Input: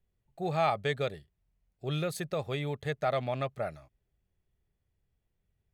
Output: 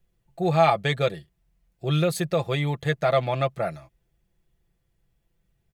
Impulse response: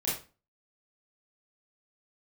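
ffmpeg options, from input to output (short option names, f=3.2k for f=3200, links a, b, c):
-af "aecho=1:1:5.9:0.56,volume=7dB"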